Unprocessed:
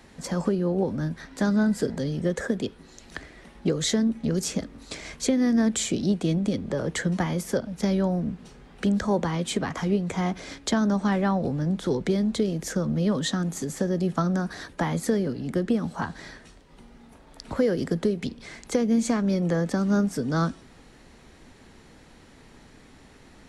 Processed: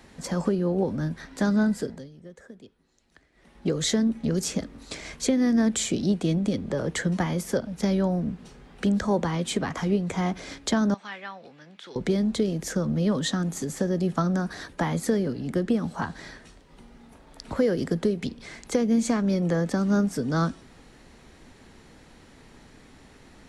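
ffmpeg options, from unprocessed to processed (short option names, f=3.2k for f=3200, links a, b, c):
-filter_complex "[0:a]asettb=1/sr,asplit=3[a][b][c];[a]atrim=end=10.944[d];[b]atrim=start=10.94:end=11.96,asetpts=PTS-STARTPTS,afade=t=in:d=0.004:c=qsin,afade=t=out:st=1.016:d=0.004:c=qsin,bandpass=f=2.6k:t=q:w=1.5[e];[c]atrim=start=11.956[f];[d][e]acrossfade=d=0.004:c1=hsin:c2=qsin[g];[g][f]acrossfade=d=0.004:c1=qsin:c2=hsin,asplit=3[h][i][j];[h]atrim=end=2.09,asetpts=PTS-STARTPTS,afade=t=out:st=1.64:d=0.45:silence=0.105925[k];[i]atrim=start=2.09:end=3.32,asetpts=PTS-STARTPTS,volume=-19.5dB[l];[j]atrim=start=3.32,asetpts=PTS-STARTPTS,afade=t=in:d=0.45:silence=0.105925[m];[k][l][m]concat=n=3:v=0:a=1"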